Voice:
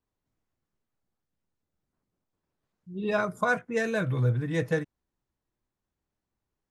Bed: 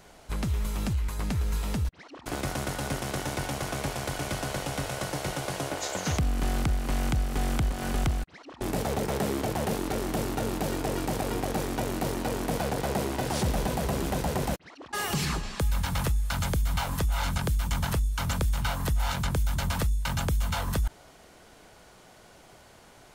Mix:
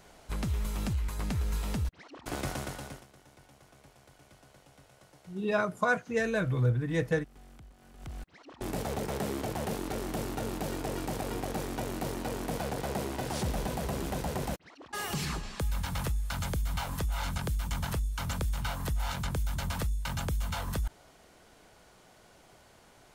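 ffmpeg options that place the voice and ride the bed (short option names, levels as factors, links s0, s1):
-filter_complex "[0:a]adelay=2400,volume=0.841[s0];[1:a]volume=7.94,afade=t=out:st=2.47:d=0.6:silence=0.0707946,afade=t=in:st=7.98:d=0.48:silence=0.0891251[s1];[s0][s1]amix=inputs=2:normalize=0"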